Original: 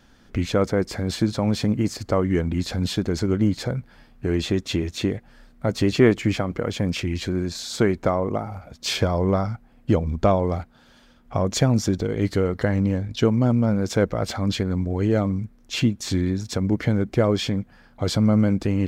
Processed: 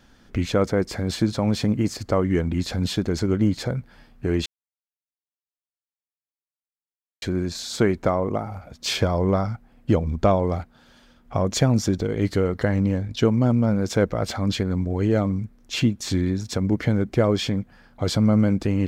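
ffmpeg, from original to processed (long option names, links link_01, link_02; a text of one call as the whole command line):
ffmpeg -i in.wav -filter_complex "[0:a]asplit=3[link_01][link_02][link_03];[link_01]atrim=end=4.46,asetpts=PTS-STARTPTS,afade=type=out:start_time=4.456:duration=0.004:curve=hsin[link_04];[link_02]atrim=start=4.46:end=7.22,asetpts=PTS-STARTPTS,volume=0[link_05];[link_03]atrim=start=7.22,asetpts=PTS-STARTPTS,afade=type=in:duration=0.004:curve=hsin[link_06];[link_04][link_05][link_06]concat=n=3:v=0:a=1" out.wav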